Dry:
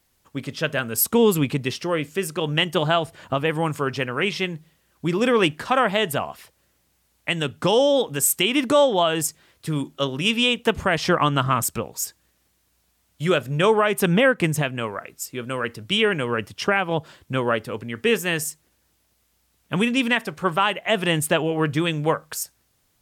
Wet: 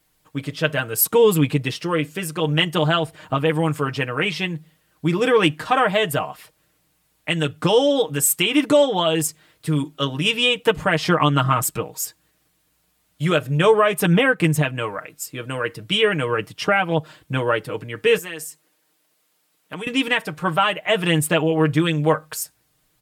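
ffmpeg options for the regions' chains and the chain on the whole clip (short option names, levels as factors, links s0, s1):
-filter_complex "[0:a]asettb=1/sr,asplit=3[s0][s1][s2];[s0]atrim=end=18.184[s3];[s1]atrim=start=18.18:end=19.87,asetpts=PTS-STARTPTS,afade=t=in:d=0.004:c=qsin,afade=t=out:st=1.686:d=0.004:c=qsin,highpass=270,acompressor=threshold=0.0224:ratio=2.5:attack=3.2:release=140:knee=1:detection=peak[s4];[s2]atrim=start=19.866[s5];[s3][s4]acrossfade=d=0.004:c1=hsin:c2=qsin[s6];[s6][s5]acrossfade=d=0.004:c1=qsin:c2=hsin,equalizer=f=6000:t=o:w=0.5:g=-3.5,aecho=1:1:6.5:0.74"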